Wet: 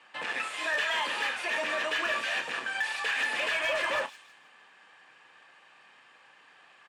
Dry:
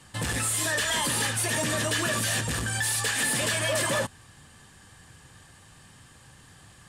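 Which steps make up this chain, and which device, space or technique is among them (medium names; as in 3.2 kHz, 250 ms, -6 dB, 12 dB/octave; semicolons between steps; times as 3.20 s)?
high-pass 140 Hz 12 dB/octave; megaphone (band-pass 610–2600 Hz; peaking EQ 2.5 kHz +7.5 dB 0.33 oct; hard clipper -23.5 dBFS, distortion -23 dB; doubling 32 ms -12 dB); feedback echo behind a high-pass 160 ms, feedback 36%, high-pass 4.5 kHz, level -8 dB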